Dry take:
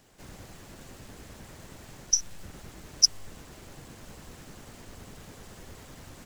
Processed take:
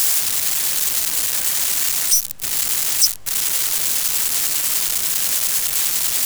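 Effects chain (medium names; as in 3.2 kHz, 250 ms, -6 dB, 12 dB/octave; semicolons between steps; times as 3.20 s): zero-crossing glitches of -9.5 dBFS; harmony voices +7 st -4 dB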